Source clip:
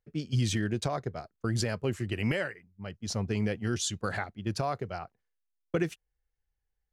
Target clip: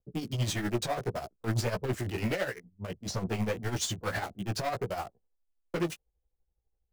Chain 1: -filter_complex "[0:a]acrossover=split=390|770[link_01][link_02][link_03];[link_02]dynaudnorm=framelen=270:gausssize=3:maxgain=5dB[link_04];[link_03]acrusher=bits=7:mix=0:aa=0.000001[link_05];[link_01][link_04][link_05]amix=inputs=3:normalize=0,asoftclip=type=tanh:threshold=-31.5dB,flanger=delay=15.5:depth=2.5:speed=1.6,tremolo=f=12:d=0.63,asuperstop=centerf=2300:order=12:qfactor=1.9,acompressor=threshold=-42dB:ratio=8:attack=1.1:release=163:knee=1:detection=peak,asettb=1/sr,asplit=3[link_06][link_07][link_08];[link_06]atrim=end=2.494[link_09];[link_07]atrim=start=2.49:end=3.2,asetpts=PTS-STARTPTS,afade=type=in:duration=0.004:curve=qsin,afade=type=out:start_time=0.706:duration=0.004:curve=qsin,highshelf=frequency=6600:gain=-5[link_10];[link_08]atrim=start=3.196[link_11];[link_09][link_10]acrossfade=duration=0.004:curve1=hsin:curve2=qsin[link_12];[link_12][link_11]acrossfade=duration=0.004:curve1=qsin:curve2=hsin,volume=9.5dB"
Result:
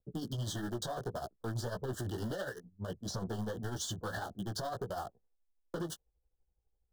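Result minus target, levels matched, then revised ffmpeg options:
downward compressor: peak gain reduction +10.5 dB; 2,000 Hz band −2.5 dB
-filter_complex "[0:a]acrossover=split=390|770[link_01][link_02][link_03];[link_02]dynaudnorm=framelen=270:gausssize=3:maxgain=5dB[link_04];[link_03]acrusher=bits=7:mix=0:aa=0.000001[link_05];[link_01][link_04][link_05]amix=inputs=3:normalize=0,asoftclip=type=tanh:threshold=-31.5dB,flanger=delay=15.5:depth=2.5:speed=1.6,tremolo=f=12:d=0.63,asettb=1/sr,asplit=3[link_06][link_07][link_08];[link_06]atrim=end=2.494[link_09];[link_07]atrim=start=2.49:end=3.2,asetpts=PTS-STARTPTS,afade=type=in:duration=0.004:curve=qsin,afade=type=out:start_time=0.706:duration=0.004:curve=qsin,highshelf=frequency=6600:gain=-5[link_10];[link_08]atrim=start=3.196[link_11];[link_09][link_10]acrossfade=duration=0.004:curve1=hsin:curve2=qsin[link_12];[link_12][link_11]acrossfade=duration=0.004:curve1=qsin:curve2=hsin,volume=9.5dB"

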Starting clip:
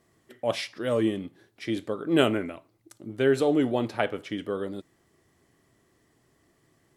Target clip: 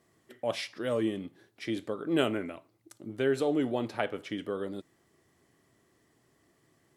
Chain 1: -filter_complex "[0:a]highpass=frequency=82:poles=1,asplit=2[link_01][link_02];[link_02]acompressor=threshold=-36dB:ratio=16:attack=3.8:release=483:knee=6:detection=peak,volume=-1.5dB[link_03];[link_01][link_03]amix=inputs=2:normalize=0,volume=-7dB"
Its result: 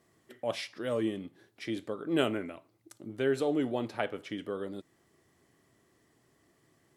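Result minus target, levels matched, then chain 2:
downward compressor: peak gain reduction +9 dB
-filter_complex "[0:a]highpass=frequency=82:poles=1,asplit=2[link_01][link_02];[link_02]acompressor=threshold=-26.5dB:ratio=16:attack=3.8:release=483:knee=6:detection=peak,volume=-1.5dB[link_03];[link_01][link_03]amix=inputs=2:normalize=0,volume=-7dB"

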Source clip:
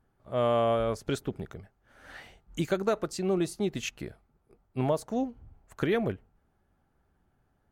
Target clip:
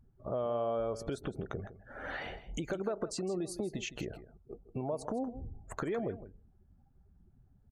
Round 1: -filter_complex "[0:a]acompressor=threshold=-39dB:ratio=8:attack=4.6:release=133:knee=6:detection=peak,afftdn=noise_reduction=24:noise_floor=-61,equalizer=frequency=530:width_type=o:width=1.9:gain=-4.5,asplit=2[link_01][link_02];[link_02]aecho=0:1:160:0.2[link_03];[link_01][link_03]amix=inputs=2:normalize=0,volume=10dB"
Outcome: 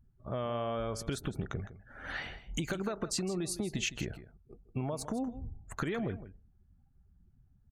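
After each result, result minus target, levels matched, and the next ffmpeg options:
downward compressor: peak gain reduction −7 dB; 500 Hz band −3.5 dB
-filter_complex "[0:a]acompressor=threshold=-47dB:ratio=8:attack=4.6:release=133:knee=6:detection=peak,afftdn=noise_reduction=24:noise_floor=-61,equalizer=frequency=530:width_type=o:width=1.9:gain=-4.5,asplit=2[link_01][link_02];[link_02]aecho=0:1:160:0.2[link_03];[link_01][link_03]amix=inputs=2:normalize=0,volume=10dB"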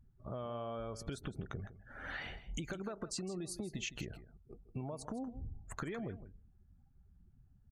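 500 Hz band −4.0 dB
-filter_complex "[0:a]acompressor=threshold=-47dB:ratio=8:attack=4.6:release=133:knee=6:detection=peak,afftdn=noise_reduction=24:noise_floor=-61,equalizer=frequency=530:width_type=o:width=1.9:gain=6,asplit=2[link_01][link_02];[link_02]aecho=0:1:160:0.2[link_03];[link_01][link_03]amix=inputs=2:normalize=0,volume=10dB"

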